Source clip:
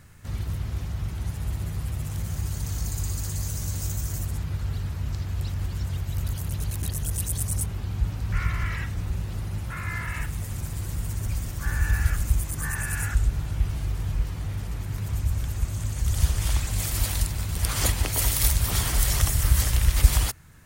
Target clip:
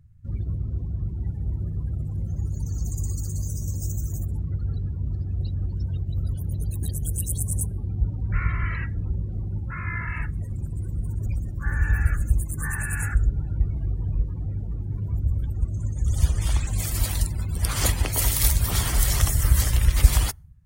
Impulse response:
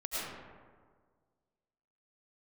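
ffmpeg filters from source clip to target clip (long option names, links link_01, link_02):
-filter_complex "[0:a]asplit=2[link_01][link_02];[1:a]atrim=start_sample=2205,lowpass=4600,lowshelf=frequency=210:gain=-7[link_03];[link_02][link_03]afir=irnorm=-1:irlink=0,volume=-26dB[link_04];[link_01][link_04]amix=inputs=2:normalize=0,afftdn=noise_reduction=30:noise_floor=-38,volume=1.5dB"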